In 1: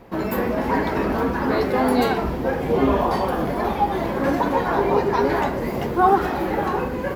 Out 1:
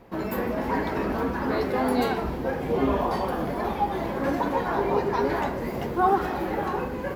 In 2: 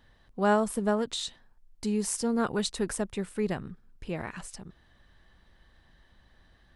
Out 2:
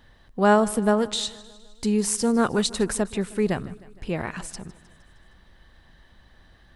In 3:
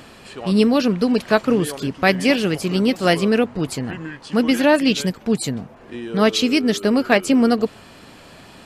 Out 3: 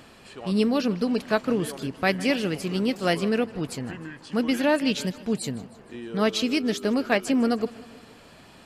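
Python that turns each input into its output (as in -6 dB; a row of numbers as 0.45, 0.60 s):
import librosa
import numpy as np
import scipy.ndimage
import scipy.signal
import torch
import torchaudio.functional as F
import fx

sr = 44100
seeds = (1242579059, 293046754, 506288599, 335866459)

y = fx.echo_feedback(x, sr, ms=155, feedback_pct=58, wet_db=-20.0)
y = y * 10.0 ** (-26 / 20.0) / np.sqrt(np.mean(np.square(y)))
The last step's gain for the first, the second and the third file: -5.0, +6.5, -7.0 dB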